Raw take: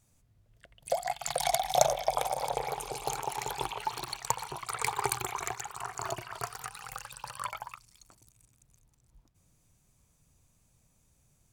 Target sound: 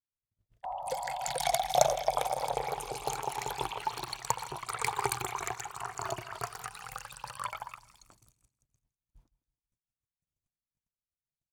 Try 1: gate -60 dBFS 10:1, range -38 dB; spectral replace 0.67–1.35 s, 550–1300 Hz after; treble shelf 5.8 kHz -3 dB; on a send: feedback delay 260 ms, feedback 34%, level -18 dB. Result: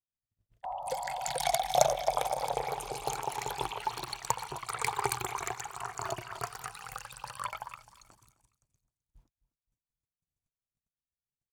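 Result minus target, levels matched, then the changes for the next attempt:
echo 98 ms late
change: feedback delay 162 ms, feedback 34%, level -18 dB

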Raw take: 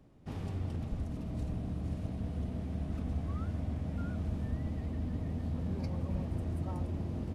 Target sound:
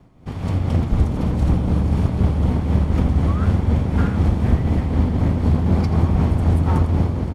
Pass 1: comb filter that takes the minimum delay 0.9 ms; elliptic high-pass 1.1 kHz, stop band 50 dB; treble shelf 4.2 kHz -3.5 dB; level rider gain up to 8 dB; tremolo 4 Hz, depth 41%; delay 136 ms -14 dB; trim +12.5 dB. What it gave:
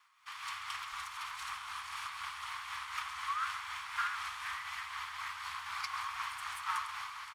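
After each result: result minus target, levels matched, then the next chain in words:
1 kHz band +14.0 dB; echo 53 ms late
comb filter that takes the minimum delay 0.9 ms; treble shelf 4.2 kHz -3.5 dB; level rider gain up to 8 dB; tremolo 4 Hz, depth 41%; delay 136 ms -14 dB; trim +12.5 dB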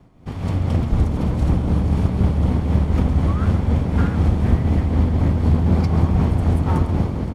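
echo 53 ms late
comb filter that takes the minimum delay 0.9 ms; treble shelf 4.2 kHz -3.5 dB; level rider gain up to 8 dB; tremolo 4 Hz, depth 41%; delay 83 ms -14 dB; trim +12.5 dB

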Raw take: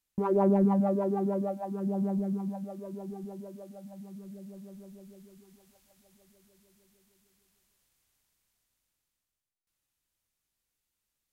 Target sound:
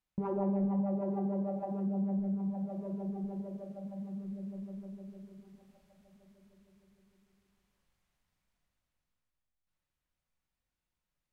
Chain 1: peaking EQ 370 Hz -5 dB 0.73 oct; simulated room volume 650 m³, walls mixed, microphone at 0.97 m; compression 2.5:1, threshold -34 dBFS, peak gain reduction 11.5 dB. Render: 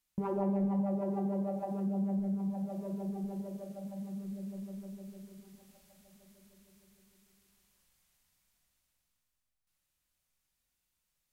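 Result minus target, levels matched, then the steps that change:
2 kHz band +3.5 dB
add first: low-pass 1.5 kHz 6 dB/octave

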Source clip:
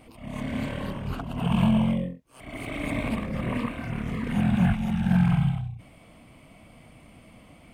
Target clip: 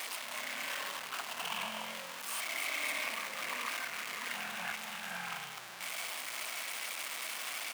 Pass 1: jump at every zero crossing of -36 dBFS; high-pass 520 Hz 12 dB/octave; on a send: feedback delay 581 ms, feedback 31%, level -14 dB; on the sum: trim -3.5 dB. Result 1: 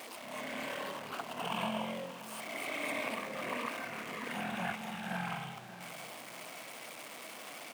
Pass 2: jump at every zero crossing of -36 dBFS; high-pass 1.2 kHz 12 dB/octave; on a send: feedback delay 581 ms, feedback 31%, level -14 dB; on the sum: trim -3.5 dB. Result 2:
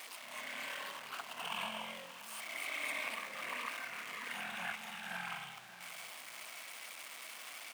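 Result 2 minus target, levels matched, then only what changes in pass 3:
jump at every zero crossing: distortion -8 dB
change: jump at every zero crossing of -26.5 dBFS

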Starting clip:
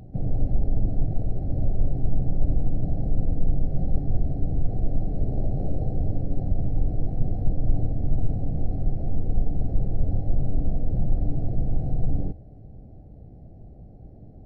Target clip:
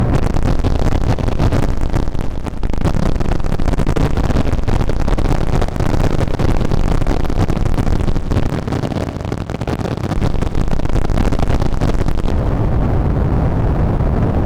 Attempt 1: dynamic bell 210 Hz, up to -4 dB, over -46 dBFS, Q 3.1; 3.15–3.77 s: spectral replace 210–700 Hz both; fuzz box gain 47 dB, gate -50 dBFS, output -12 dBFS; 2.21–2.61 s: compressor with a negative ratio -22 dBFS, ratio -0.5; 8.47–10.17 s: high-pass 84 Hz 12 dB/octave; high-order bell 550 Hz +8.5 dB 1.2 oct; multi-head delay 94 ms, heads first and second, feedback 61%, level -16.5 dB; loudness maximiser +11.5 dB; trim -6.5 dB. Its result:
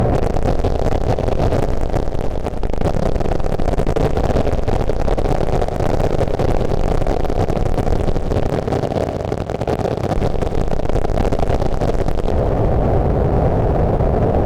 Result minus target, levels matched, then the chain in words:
500 Hz band +5.5 dB
dynamic bell 210 Hz, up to -4 dB, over -46 dBFS, Q 3.1; 3.15–3.77 s: spectral replace 210–700 Hz both; fuzz box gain 47 dB, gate -50 dBFS, output -12 dBFS; 2.21–2.61 s: compressor with a negative ratio -22 dBFS, ratio -0.5; 8.47–10.17 s: high-pass 84 Hz 12 dB/octave; multi-head delay 94 ms, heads first and second, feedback 61%, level -16.5 dB; loudness maximiser +11.5 dB; trim -6.5 dB

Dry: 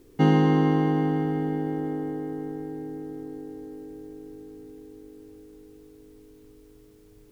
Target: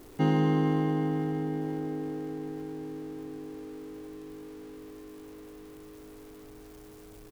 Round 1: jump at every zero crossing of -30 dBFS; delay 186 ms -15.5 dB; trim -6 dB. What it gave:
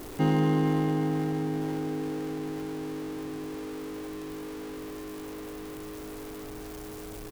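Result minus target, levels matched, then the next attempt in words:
jump at every zero crossing: distortion +10 dB
jump at every zero crossing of -41 dBFS; delay 186 ms -15.5 dB; trim -6 dB

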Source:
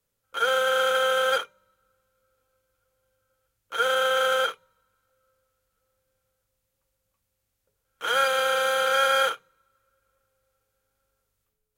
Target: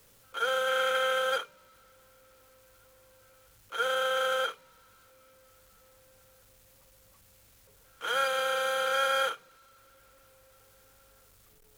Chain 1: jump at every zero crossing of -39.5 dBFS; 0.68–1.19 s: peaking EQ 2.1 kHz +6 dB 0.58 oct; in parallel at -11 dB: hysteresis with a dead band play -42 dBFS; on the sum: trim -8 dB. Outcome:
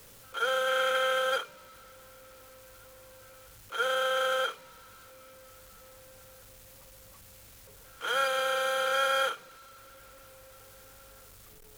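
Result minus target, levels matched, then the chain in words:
jump at every zero crossing: distortion +7 dB
jump at every zero crossing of -46.5 dBFS; 0.68–1.19 s: peaking EQ 2.1 kHz +6 dB 0.58 oct; in parallel at -11 dB: hysteresis with a dead band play -42 dBFS; on the sum: trim -8 dB

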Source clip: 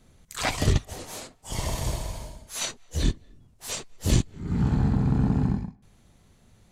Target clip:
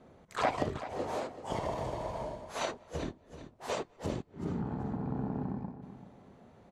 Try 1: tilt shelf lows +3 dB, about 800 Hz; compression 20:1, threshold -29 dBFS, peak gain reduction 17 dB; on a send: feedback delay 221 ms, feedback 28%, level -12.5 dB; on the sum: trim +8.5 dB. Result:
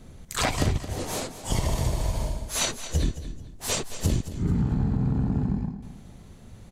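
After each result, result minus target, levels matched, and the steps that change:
echo 162 ms early; 500 Hz band -8.0 dB
change: feedback delay 383 ms, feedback 28%, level -12.5 dB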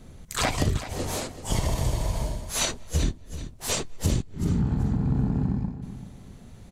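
500 Hz band -8.0 dB
add after compression: band-pass filter 700 Hz, Q 0.89

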